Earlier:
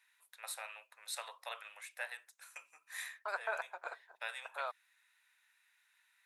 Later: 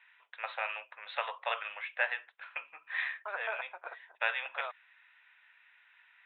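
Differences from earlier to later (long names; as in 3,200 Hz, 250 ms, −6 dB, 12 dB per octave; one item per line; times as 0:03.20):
first voice +11.5 dB
master: add Butterworth low-pass 3,400 Hz 72 dB per octave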